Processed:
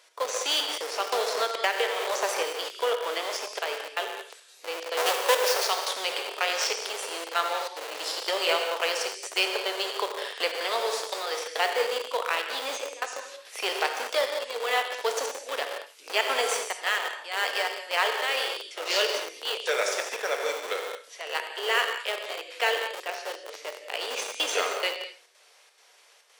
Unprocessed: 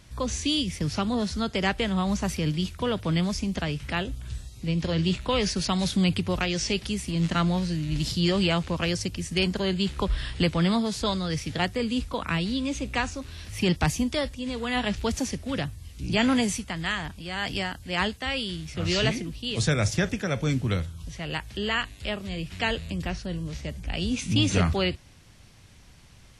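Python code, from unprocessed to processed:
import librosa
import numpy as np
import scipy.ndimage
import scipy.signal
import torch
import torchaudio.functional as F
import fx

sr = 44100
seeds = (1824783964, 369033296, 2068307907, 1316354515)

p1 = fx.halfwave_hold(x, sr, at=(4.97, 5.64))
p2 = fx.step_gate(p1, sr, bpm=174, pattern='x.xxxxx.xxx', floor_db=-24.0, edge_ms=4.5)
p3 = p2 + fx.echo_single(p2, sr, ms=84, db=-13.5, dry=0)
p4 = fx.rev_gated(p3, sr, seeds[0], gate_ms=240, shape='flat', drr_db=3.5)
p5 = fx.schmitt(p4, sr, flips_db=-25.0)
p6 = p4 + (p5 * librosa.db_to_amplitude(-3.0))
p7 = scipy.signal.sosfilt(scipy.signal.ellip(4, 1.0, 60, 450.0, 'highpass', fs=sr, output='sos'), p6)
y = fx.band_squash(p7, sr, depth_pct=100, at=(1.12, 2.43))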